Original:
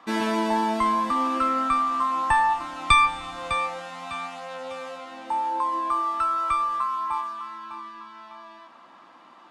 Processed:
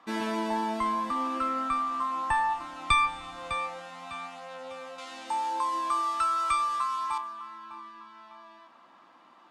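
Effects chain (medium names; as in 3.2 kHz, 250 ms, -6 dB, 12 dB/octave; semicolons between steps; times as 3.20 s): 4.98–7.18 s: peaking EQ 7.1 kHz +14 dB 2.9 oct; trim -6 dB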